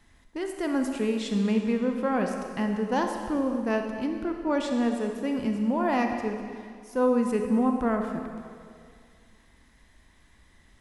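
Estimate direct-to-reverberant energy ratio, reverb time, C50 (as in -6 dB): 4.0 dB, 2.1 s, 4.5 dB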